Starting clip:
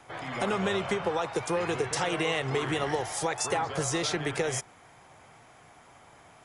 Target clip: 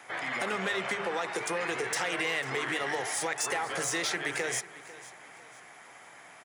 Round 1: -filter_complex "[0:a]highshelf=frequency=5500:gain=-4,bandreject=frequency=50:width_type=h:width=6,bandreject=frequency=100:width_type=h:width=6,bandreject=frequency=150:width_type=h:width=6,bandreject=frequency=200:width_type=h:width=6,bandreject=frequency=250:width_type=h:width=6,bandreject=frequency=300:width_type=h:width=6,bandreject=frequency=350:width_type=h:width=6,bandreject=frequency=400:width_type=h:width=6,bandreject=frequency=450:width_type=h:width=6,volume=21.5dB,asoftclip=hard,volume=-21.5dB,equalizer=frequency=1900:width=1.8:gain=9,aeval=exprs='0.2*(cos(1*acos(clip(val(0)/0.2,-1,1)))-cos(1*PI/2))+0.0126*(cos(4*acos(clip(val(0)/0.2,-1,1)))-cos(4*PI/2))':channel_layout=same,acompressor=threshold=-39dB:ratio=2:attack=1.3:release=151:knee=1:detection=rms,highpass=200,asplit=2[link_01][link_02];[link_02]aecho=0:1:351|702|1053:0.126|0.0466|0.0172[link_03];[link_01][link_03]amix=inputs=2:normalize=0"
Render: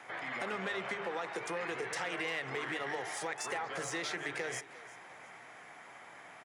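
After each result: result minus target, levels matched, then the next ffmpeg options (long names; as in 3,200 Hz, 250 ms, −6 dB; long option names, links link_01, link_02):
echo 146 ms early; downward compressor: peak gain reduction +5.5 dB; 8,000 Hz band −4.0 dB
-filter_complex "[0:a]highshelf=frequency=5500:gain=-4,bandreject=frequency=50:width_type=h:width=6,bandreject=frequency=100:width_type=h:width=6,bandreject=frequency=150:width_type=h:width=6,bandreject=frequency=200:width_type=h:width=6,bandreject=frequency=250:width_type=h:width=6,bandreject=frequency=300:width_type=h:width=6,bandreject=frequency=350:width_type=h:width=6,bandreject=frequency=400:width_type=h:width=6,bandreject=frequency=450:width_type=h:width=6,volume=21.5dB,asoftclip=hard,volume=-21.5dB,equalizer=frequency=1900:width=1.8:gain=9,aeval=exprs='0.2*(cos(1*acos(clip(val(0)/0.2,-1,1)))-cos(1*PI/2))+0.0126*(cos(4*acos(clip(val(0)/0.2,-1,1)))-cos(4*PI/2))':channel_layout=same,acompressor=threshold=-39dB:ratio=2:attack=1.3:release=151:knee=1:detection=rms,highpass=200,asplit=2[link_01][link_02];[link_02]aecho=0:1:497|994|1491:0.126|0.0466|0.0172[link_03];[link_01][link_03]amix=inputs=2:normalize=0"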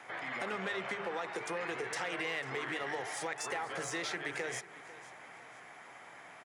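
downward compressor: peak gain reduction +5.5 dB; 8,000 Hz band −4.0 dB
-filter_complex "[0:a]highshelf=frequency=5500:gain=-4,bandreject=frequency=50:width_type=h:width=6,bandreject=frequency=100:width_type=h:width=6,bandreject=frequency=150:width_type=h:width=6,bandreject=frequency=200:width_type=h:width=6,bandreject=frequency=250:width_type=h:width=6,bandreject=frequency=300:width_type=h:width=6,bandreject=frequency=350:width_type=h:width=6,bandreject=frequency=400:width_type=h:width=6,bandreject=frequency=450:width_type=h:width=6,volume=21.5dB,asoftclip=hard,volume=-21.5dB,equalizer=frequency=1900:width=1.8:gain=9,aeval=exprs='0.2*(cos(1*acos(clip(val(0)/0.2,-1,1)))-cos(1*PI/2))+0.0126*(cos(4*acos(clip(val(0)/0.2,-1,1)))-cos(4*PI/2))':channel_layout=same,acompressor=threshold=-28dB:ratio=2:attack=1.3:release=151:knee=1:detection=rms,highpass=200,asplit=2[link_01][link_02];[link_02]aecho=0:1:497|994|1491:0.126|0.0466|0.0172[link_03];[link_01][link_03]amix=inputs=2:normalize=0"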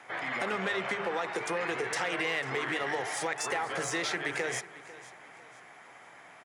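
8,000 Hz band −4.0 dB
-filter_complex "[0:a]highshelf=frequency=5500:gain=7,bandreject=frequency=50:width_type=h:width=6,bandreject=frequency=100:width_type=h:width=6,bandreject=frequency=150:width_type=h:width=6,bandreject=frequency=200:width_type=h:width=6,bandreject=frequency=250:width_type=h:width=6,bandreject=frequency=300:width_type=h:width=6,bandreject=frequency=350:width_type=h:width=6,bandreject=frequency=400:width_type=h:width=6,bandreject=frequency=450:width_type=h:width=6,volume=21.5dB,asoftclip=hard,volume=-21.5dB,equalizer=frequency=1900:width=1.8:gain=9,aeval=exprs='0.2*(cos(1*acos(clip(val(0)/0.2,-1,1)))-cos(1*PI/2))+0.0126*(cos(4*acos(clip(val(0)/0.2,-1,1)))-cos(4*PI/2))':channel_layout=same,acompressor=threshold=-28dB:ratio=2:attack=1.3:release=151:knee=1:detection=rms,highpass=200,asplit=2[link_01][link_02];[link_02]aecho=0:1:497|994|1491:0.126|0.0466|0.0172[link_03];[link_01][link_03]amix=inputs=2:normalize=0"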